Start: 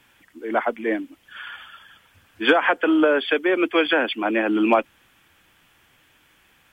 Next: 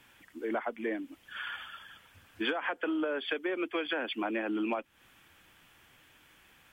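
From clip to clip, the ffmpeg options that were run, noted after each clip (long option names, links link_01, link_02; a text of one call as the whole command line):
ffmpeg -i in.wav -af "acompressor=threshold=-28dB:ratio=6,volume=-2.5dB" out.wav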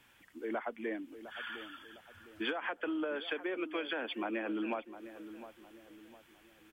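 ffmpeg -i in.wav -filter_complex "[0:a]asplit=2[link_01][link_02];[link_02]adelay=707,lowpass=frequency=1300:poles=1,volume=-12dB,asplit=2[link_03][link_04];[link_04]adelay=707,lowpass=frequency=1300:poles=1,volume=0.43,asplit=2[link_05][link_06];[link_06]adelay=707,lowpass=frequency=1300:poles=1,volume=0.43,asplit=2[link_07][link_08];[link_08]adelay=707,lowpass=frequency=1300:poles=1,volume=0.43[link_09];[link_01][link_03][link_05][link_07][link_09]amix=inputs=5:normalize=0,volume=-4dB" out.wav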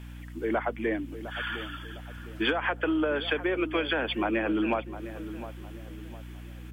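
ffmpeg -i in.wav -af "aeval=exprs='val(0)+0.00316*(sin(2*PI*60*n/s)+sin(2*PI*2*60*n/s)/2+sin(2*PI*3*60*n/s)/3+sin(2*PI*4*60*n/s)/4+sin(2*PI*5*60*n/s)/5)':channel_layout=same,volume=9dB" out.wav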